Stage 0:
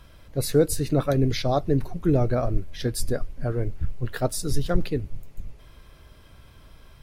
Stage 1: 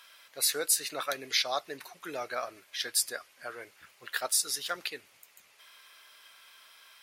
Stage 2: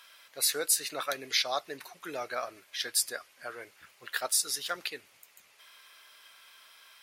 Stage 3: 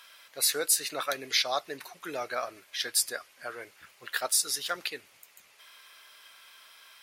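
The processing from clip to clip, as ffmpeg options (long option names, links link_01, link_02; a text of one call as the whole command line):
ffmpeg -i in.wav -af "highpass=1500,volume=5dB" out.wav
ffmpeg -i in.wav -af anull out.wav
ffmpeg -i in.wav -af "asoftclip=type=tanh:threshold=-12dB,volume=2dB" out.wav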